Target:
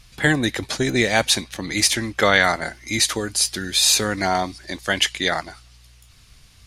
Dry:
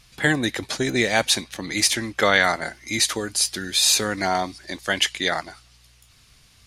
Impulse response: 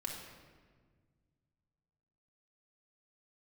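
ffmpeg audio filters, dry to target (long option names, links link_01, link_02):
-af "lowshelf=frequency=87:gain=8.5,volume=1.5dB"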